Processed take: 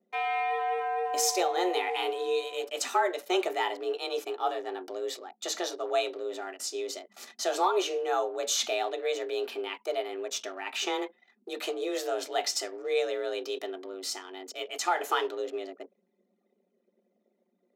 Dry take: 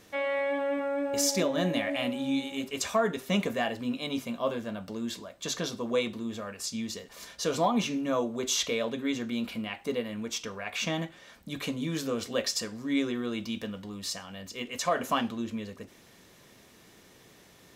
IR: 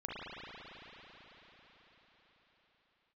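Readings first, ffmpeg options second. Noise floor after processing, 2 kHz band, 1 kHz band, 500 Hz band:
−75 dBFS, 0.0 dB, +5.5 dB, +1.5 dB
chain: -af "anlmdn=0.0251,afreqshift=180"

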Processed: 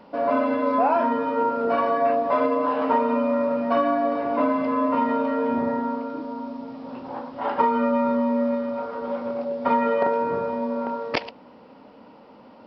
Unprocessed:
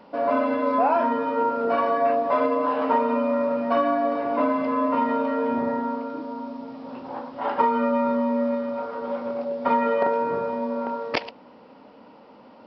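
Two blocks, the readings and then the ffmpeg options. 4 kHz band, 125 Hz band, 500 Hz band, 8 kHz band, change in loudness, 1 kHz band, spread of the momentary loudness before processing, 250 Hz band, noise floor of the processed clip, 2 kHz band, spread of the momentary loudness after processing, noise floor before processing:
0.0 dB, +2.5 dB, +0.5 dB, can't be measured, +0.5 dB, 0.0 dB, 11 LU, +1.5 dB, −49 dBFS, 0.0 dB, 10 LU, −49 dBFS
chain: -af "lowshelf=frequency=150:gain=5"

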